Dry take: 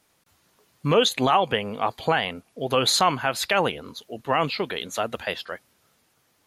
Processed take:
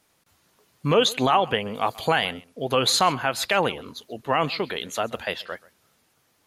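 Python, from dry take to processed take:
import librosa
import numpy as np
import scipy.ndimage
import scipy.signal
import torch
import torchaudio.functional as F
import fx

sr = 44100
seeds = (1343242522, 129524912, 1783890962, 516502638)

y = fx.high_shelf(x, sr, hz=5100.0, db=11.5, at=(1.75, 2.31))
y = y + 10.0 ** (-21.5 / 20.0) * np.pad(y, (int(133 * sr / 1000.0), 0))[:len(y)]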